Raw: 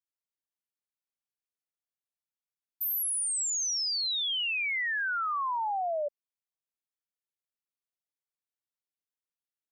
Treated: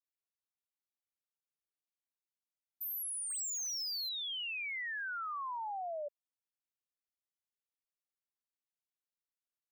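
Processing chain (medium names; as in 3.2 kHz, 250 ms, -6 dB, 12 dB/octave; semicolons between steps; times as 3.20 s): 3.30–4.09 s: waveshaping leveller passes 2; trim -9 dB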